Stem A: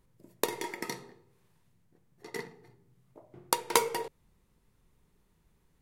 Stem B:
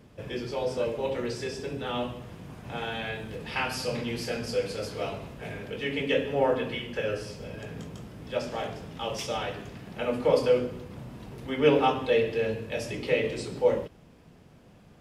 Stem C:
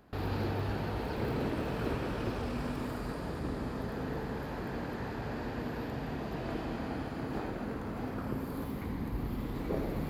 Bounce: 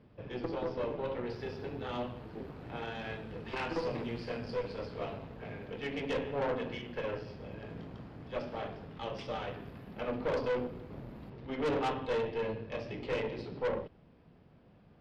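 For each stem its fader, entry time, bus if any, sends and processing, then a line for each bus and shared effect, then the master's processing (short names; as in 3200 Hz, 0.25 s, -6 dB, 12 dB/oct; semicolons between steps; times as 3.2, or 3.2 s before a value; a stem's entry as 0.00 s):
+3.0 dB, 0.00 s, no send, arpeggiated vocoder minor triad, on A2, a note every 0.184 s; band-pass 290 Hz, Q 1.4
-2.0 dB, 0.00 s, no send, steep low-pass 5100 Hz 48 dB/oct; high shelf 3000 Hz -9 dB
-13.0 dB, 1.20 s, no send, high shelf 7300 Hz -7 dB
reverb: off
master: tube stage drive 28 dB, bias 0.7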